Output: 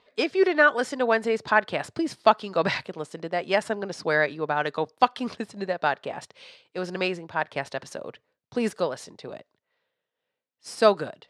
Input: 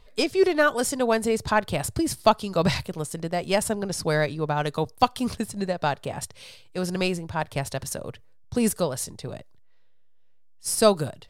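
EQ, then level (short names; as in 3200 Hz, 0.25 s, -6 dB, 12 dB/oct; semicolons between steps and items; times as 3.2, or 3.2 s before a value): dynamic EQ 1700 Hz, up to +6 dB, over -41 dBFS, Q 2.1; BPF 270–3900 Hz; 0.0 dB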